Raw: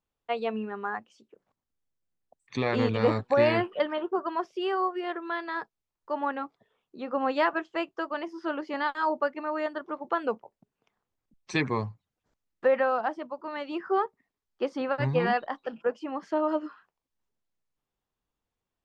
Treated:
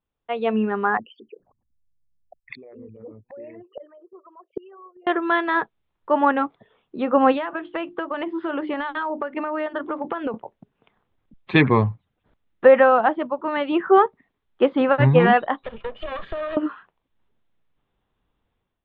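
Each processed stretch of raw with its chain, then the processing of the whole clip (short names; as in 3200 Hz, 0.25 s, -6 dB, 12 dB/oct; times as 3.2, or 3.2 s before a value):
0.97–5.07 formant sharpening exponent 3 + bell 2600 Hz +10 dB 0.41 oct + flipped gate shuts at -29 dBFS, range -30 dB
7.32–10.34 notches 50/100/150/200/250/300/350 Hz + compressor 16:1, threshold -34 dBFS
15.63–16.57 minimum comb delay 1.7 ms + high shelf 4400 Hz +12 dB + compressor 12:1, threshold -37 dBFS
whole clip: elliptic low-pass 3600 Hz, stop band 40 dB; low shelf 380 Hz +4.5 dB; AGC gain up to 11.5 dB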